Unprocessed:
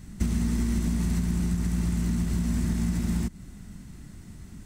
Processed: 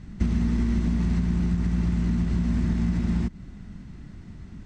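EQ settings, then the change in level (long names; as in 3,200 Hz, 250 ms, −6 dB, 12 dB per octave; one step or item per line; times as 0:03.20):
high-frequency loss of the air 160 metres
+2.5 dB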